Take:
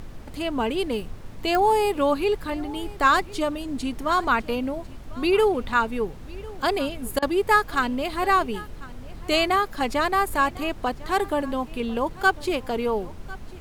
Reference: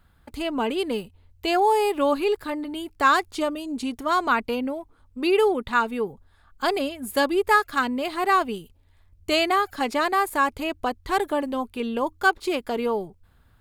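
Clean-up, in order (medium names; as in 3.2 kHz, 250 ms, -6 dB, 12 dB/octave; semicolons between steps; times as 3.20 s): de-click; interpolate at 7.19 s, 32 ms; noise print and reduce 19 dB; inverse comb 1049 ms -20.5 dB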